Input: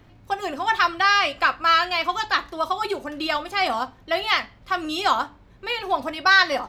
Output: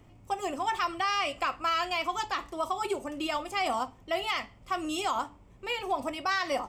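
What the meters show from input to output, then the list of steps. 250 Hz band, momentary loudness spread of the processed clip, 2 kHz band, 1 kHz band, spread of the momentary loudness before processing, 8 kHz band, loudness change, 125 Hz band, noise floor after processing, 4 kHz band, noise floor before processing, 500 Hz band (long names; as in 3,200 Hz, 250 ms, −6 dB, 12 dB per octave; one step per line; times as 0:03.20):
−4.5 dB, 6 LU, −13.0 dB, −8.0 dB, 11 LU, −2.0 dB, −9.0 dB, −4.5 dB, −55 dBFS, −10.0 dB, −51 dBFS, −5.5 dB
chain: thirty-one-band graphic EQ 1,600 Hz −11 dB, 4,000 Hz −11 dB, 8,000 Hz +10 dB
brickwall limiter −16 dBFS, peak gain reduction 7 dB
level −4 dB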